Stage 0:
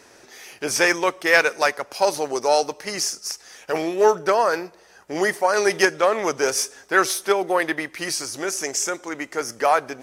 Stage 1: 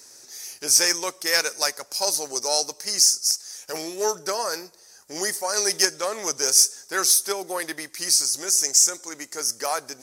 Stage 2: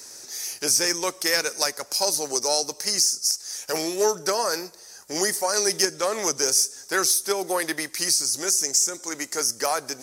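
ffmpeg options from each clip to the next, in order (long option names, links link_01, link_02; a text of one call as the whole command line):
ffmpeg -i in.wav -af "equalizer=frequency=5800:width_type=o:width=1.7:gain=4.5,bandreject=frequency=690:width=23,aexciter=amount=5.4:drive=4.4:freq=4300,volume=-9dB" out.wav
ffmpeg -i in.wav -filter_complex "[0:a]acrossover=split=380[link_01][link_02];[link_02]acompressor=threshold=-28dB:ratio=2.5[link_03];[link_01][link_03]amix=inputs=2:normalize=0,volume=5.5dB" out.wav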